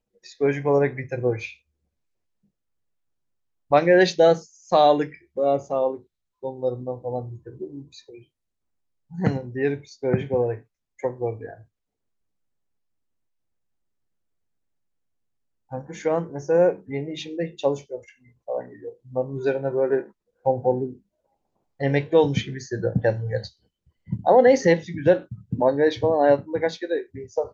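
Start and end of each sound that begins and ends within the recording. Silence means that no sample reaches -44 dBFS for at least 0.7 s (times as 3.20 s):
3.71–8.23 s
9.11–11.63 s
15.71–20.97 s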